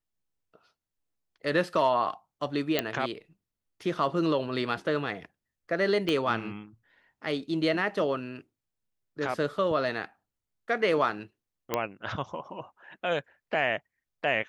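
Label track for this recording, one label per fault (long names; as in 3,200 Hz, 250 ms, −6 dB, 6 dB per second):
2.790000	2.790000	click −10 dBFS
6.090000	6.090000	click −17 dBFS
11.740000	11.740000	click −12 dBFS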